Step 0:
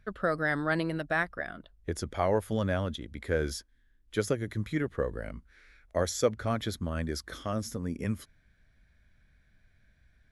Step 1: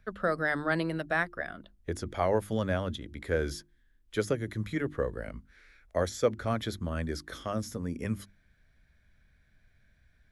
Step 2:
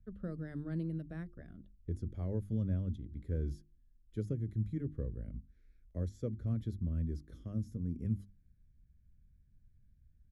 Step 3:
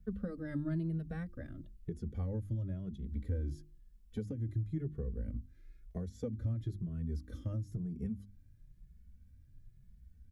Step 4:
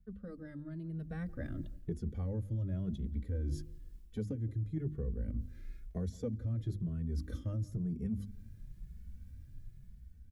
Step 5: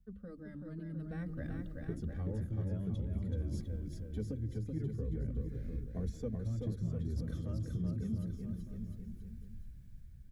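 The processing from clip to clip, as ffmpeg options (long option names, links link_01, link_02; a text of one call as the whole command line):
ffmpeg -i in.wav -filter_complex "[0:a]bandreject=frequency=50:width_type=h:width=6,bandreject=frequency=100:width_type=h:width=6,bandreject=frequency=150:width_type=h:width=6,bandreject=frequency=200:width_type=h:width=6,bandreject=frequency=250:width_type=h:width=6,bandreject=frequency=300:width_type=h:width=6,bandreject=frequency=350:width_type=h:width=6,acrossover=split=380|3600[link_01][link_02][link_03];[link_03]alimiter=level_in=10dB:limit=-24dB:level=0:latency=1:release=90,volume=-10dB[link_04];[link_01][link_02][link_04]amix=inputs=3:normalize=0" out.wav
ffmpeg -i in.wav -af "firequalizer=gain_entry='entry(110,0);entry(750,-29);entry(6700,-24)':delay=0.05:min_phase=1,volume=1dB" out.wav
ffmpeg -i in.wav -filter_complex "[0:a]acompressor=threshold=-40dB:ratio=10,asplit=2[link_01][link_02];[link_02]adelay=2.3,afreqshift=1[link_03];[link_01][link_03]amix=inputs=2:normalize=1,volume=9.5dB" out.wav
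ffmpeg -i in.wav -filter_complex "[0:a]areverse,acompressor=threshold=-43dB:ratio=6,areverse,asplit=2[link_01][link_02];[link_02]adelay=171,lowpass=frequency=1300:poles=1,volume=-21dB,asplit=2[link_03][link_04];[link_04]adelay=171,lowpass=frequency=1300:poles=1,volume=0.43,asplit=2[link_05][link_06];[link_06]adelay=171,lowpass=frequency=1300:poles=1,volume=0.43[link_07];[link_01][link_03][link_05][link_07]amix=inputs=4:normalize=0,dynaudnorm=framelen=140:gausssize=17:maxgain=9.5dB" out.wav
ffmpeg -i in.wav -af "aecho=1:1:380|703|977.6|1211|1409:0.631|0.398|0.251|0.158|0.1,volume=-2dB" out.wav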